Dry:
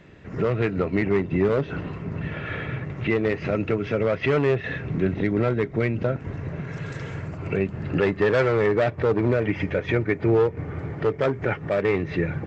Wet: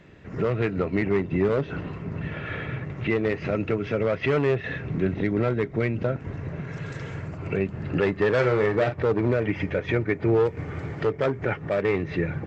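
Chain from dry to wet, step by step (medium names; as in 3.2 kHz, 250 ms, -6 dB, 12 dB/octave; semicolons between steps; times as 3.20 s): 8.34–8.98 s: doubling 40 ms -8.5 dB; 10.45–11.04 s: treble shelf 2.3 kHz -> 2.8 kHz +11 dB; trim -1.5 dB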